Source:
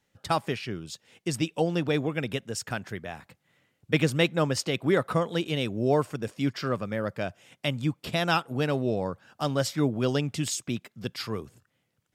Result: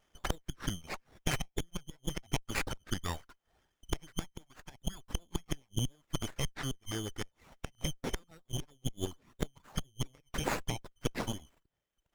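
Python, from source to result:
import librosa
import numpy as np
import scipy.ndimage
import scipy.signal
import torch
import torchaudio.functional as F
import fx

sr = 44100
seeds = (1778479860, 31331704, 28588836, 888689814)

y = fx.band_shuffle(x, sr, order='3412')
y = fx.gate_flip(y, sr, shuts_db=-16.0, range_db=-25)
y = fx.dereverb_blind(y, sr, rt60_s=0.91)
y = fx.peak_eq(y, sr, hz=fx.steps((0.0, 1600.0), (7.75, 280.0)), db=8.5, octaves=2.4)
y = fx.env_phaser(y, sr, low_hz=230.0, high_hz=4100.0, full_db=-27.0)
y = fx.running_max(y, sr, window=9)
y = y * librosa.db_to_amplitude(2.5)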